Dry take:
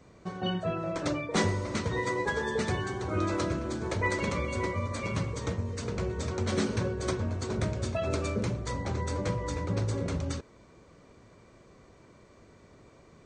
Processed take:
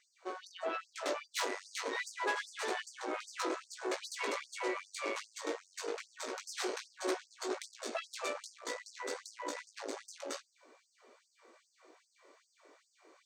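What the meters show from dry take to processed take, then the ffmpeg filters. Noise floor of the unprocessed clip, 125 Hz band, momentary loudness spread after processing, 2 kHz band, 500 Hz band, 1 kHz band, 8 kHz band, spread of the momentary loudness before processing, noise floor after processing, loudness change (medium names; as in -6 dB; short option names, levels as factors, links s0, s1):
-57 dBFS, under -40 dB, 7 LU, -4.5 dB, -7.5 dB, -5.0 dB, -2.0 dB, 4 LU, -76 dBFS, -8.0 dB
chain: -af "flanger=delay=16:depth=3.9:speed=0.28,aeval=exprs='(tanh(39.8*val(0)+0.75)-tanh(0.75))/39.8':c=same,afftfilt=real='re*gte(b*sr/1024,250*pow(4700/250,0.5+0.5*sin(2*PI*2.5*pts/sr)))':imag='im*gte(b*sr/1024,250*pow(4700/250,0.5+0.5*sin(2*PI*2.5*pts/sr)))':win_size=1024:overlap=0.75,volume=1.88"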